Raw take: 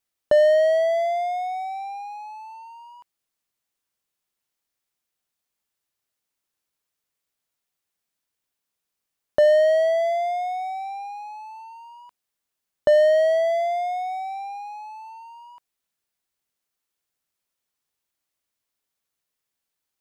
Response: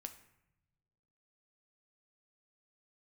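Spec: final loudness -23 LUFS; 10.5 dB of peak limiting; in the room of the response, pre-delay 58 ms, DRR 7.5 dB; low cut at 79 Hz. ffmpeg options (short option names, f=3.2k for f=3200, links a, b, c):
-filter_complex "[0:a]highpass=79,alimiter=limit=-19dB:level=0:latency=1,asplit=2[a][b];[1:a]atrim=start_sample=2205,adelay=58[c];[b][c]afir=irnorm=-1:irlink=0,volume=-3dB[d];[a][d]amix=inputs=2:normalize=0,volume=3dB"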